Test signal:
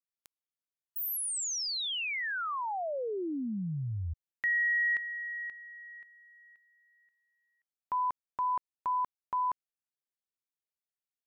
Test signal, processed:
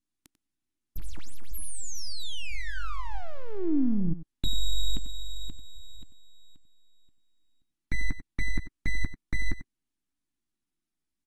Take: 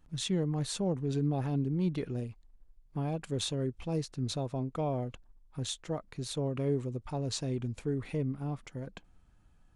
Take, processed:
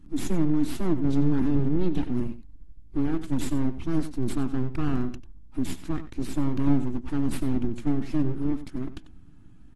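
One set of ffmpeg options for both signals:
ffmpeg -i in.wav -filter_complex "[0:a]aeval=exprs='abs(val(0))':channel_layout=same,asplit=2[link_01][link_02];[link_02]acompressor=threshold=-45dB:ratio=10:attack=1.3:release=64:knee=1:detection=rms,volume=-3dB[link_03];[link_01][link_03]amix=inputs=2:normalize=0,lowshelf=frequency=390:width_type=q:width=3:gain=9,asplit=2[link_04][link_05];[link_05]adelay=93.29,volume=-13dB,highshelf=frequency=4000:gain=-2.1[link_06];[link_04][link_06]amix=inputs=2:normalize=0" -ar 48000 -c:a aac -b:a 32k out.aac

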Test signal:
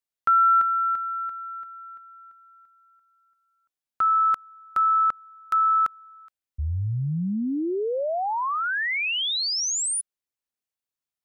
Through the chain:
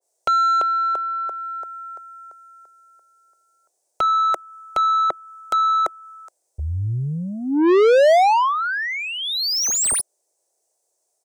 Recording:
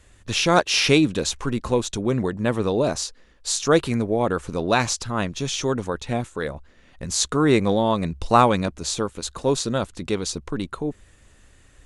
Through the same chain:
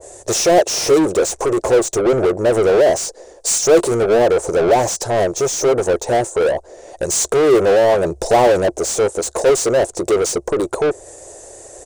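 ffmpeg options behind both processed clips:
ffmpeg -i in.wav -filter_complex "[0:a]acontrast=54,firequalizer=gain_entry='entry(110,0);entry(230,-14);entry(350,10);entry(650,12);entry(1200,-12);entry(1800,-13);entry(3000,-17);entry(6000,5);entry(8500,9);entry(13000,-5)':delay=0.05:min_phase=1,asplit=2[link_01][link_02];[link_02]highpass=frequency=720:poles=1,volume=24dB,asoftclip=type=tanh:threshold=-5dB[link_03];[link_01][link_03]amix=inputs=2:normalize=0,lowpass=frequency=7200:poles=1,volume=-6dB,adynamicequalizer=threshold=0.0562:dfrequency=1600:dqfactor=0.7:tfrequency=1600:tqfactor=0.7:attack=5:release=100:ratio=0.375:range=3:mode=cutabove:tftype=highshelf,volume=-4.5dB" out.wav

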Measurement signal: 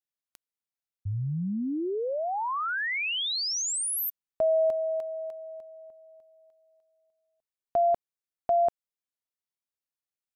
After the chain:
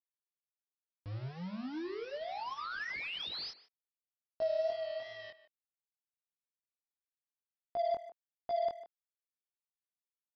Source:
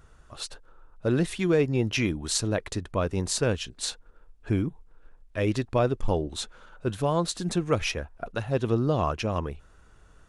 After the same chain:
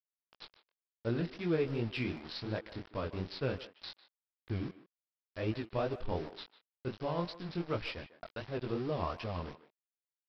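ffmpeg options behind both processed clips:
ffmpeg -i in.wav -filter_complex "[0:a]aresample=11025,aeval=exprs='val(0)*gte(abs(val(0)),0.0237)':channel_layout=same,aresample=44100,flanger=delay=17:depth=6.9:speed=2.7,asplit=2[link_01][link_02];[link_02]adelay=150,highpass=300,lowpass=3400,asoftclip=type=hard:threshold=-22.5dB,volume=-14dB[link_03];[link_01][link_03]amix=inputs=2:normalize=0,aeval=exprs='0.211*(cos(1*acos(clip(val(0)/0.211,-1,1)))-cos(1*PI/2))+0.00299*(cos(7*acos(clip(val(0)/0.211,-1,1)))-cos(7*PI/2))':channel_layout=same,volume=-7dB" out.wav

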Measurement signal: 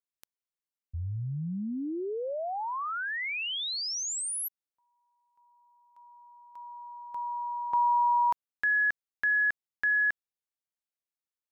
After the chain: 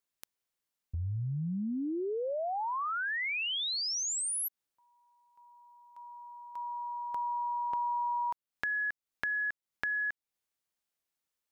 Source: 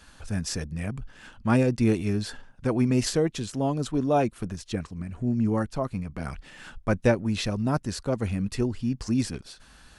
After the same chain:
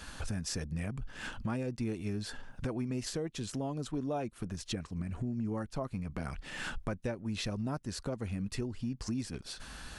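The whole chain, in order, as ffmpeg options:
ffmpeg -i in.wav -af "acompressor=threshold=-38dB:ratio=6:attack=4.1:release=529:knee=1:detection=peak,volume=6dB" out.wav

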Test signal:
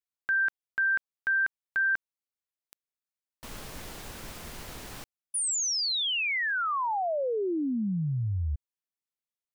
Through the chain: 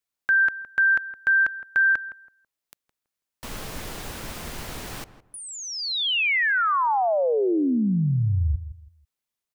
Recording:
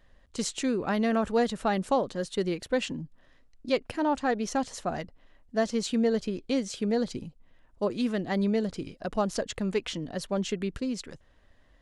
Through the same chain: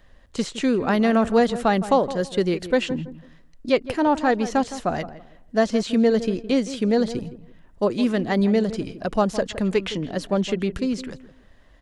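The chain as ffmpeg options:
ffmpeg -i in.wav -filter_complex "[0:a]acrossover=split=680|3700[link_01][link_02][link_03];[link_03]acompressor=threshold=-48dB:ratio=6:attack=8.9:release=28:knee=1[link_04];[link_01][link_02][link_04]amix=inputs=3:normalize=0,asplit=2[link_05][link_06];[link_06]adelay=164,lowpass=frequency=1400:poles=1,volume=-13dB,asplit=2[link_07][link_08];[link_08]adelay=164,lowpass=frequency=1400:poles=1,volume=0.27,asplit=2[link_09][link_10];[link_10]adelay=164,lowpass=frequency=1400:poles=1,volume=0.27[link_11];[link_05][link_07][link_09][link_11]amix=inputs=4:normalize=0,volume=7dB" out.wav

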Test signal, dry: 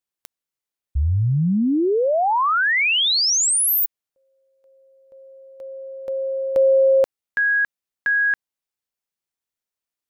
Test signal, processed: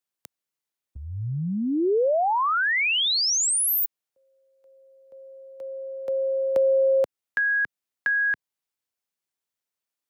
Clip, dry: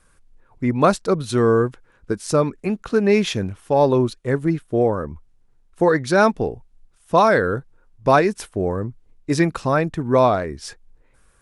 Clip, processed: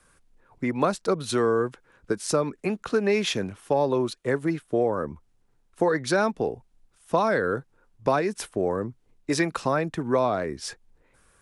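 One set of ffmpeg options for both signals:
ffmpeg -i in.wav -filter_complex "[0:a]lowshelf=frequency=66:gain=-10,acrossover=split=130|390[link_01][link_02][link_03];[link_01]acompressor=threshold=-46dB:ratio=4[link_04];[link_02]acompressor=threshold=-29dB:ratio=4[link_05];[link_03]acompressor=threshold=-22dB:ratio=4[link_06];[link_04][link_05][link_06]amix=inputs=3:normalize=0" out.wav

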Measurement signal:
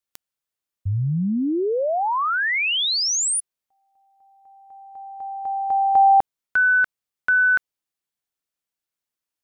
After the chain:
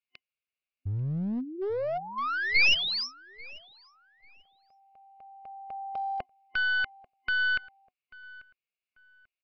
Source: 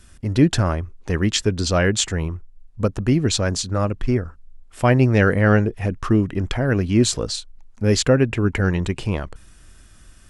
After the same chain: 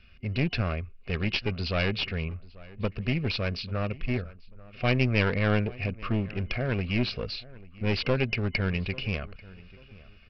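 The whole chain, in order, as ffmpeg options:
ffmpeg -i in.wav -filter_complex "[0:a]superequalizer=6b=0.316:9b=0.282:12b=3.98,aresample=11025,aeval=exprs='clip(val(0),-1,0.0841)':channel_layout=same,aresample=44100,asplit=2[link_01][link_02];[link_02]adelay=840,lowpass=frequency=2300:poles=1,volume=-20.5dB,asplit=2[link_03][link_04];[link_04]adelay=840,lowpass=frequency=2300:poles=1,volume=0.31[link_05];[link_01][link_03][link_05]amix=inputs=3:normalize=0,volume=-7.5dB" out.wav

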